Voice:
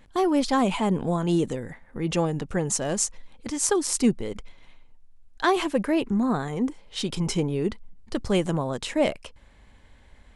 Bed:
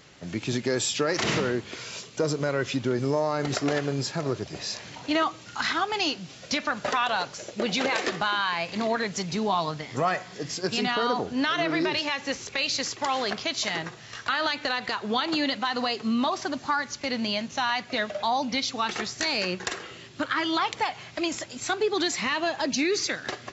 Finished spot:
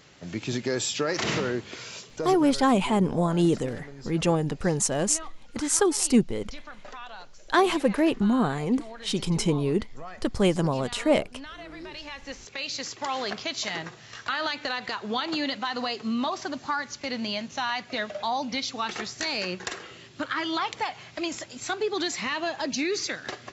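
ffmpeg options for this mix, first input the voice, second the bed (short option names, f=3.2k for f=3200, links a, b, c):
-filter_complex "[0:a]adelay=2100,volume=1dB[a];[1:a]volume=12.5dB,afade=t=out:st=1.85:d=0.78:silence=0.177828,afade=t=in:st=11.78:d=1.47:silence=0.199526[b];[a][b]amix=inputs=2:normalize=0"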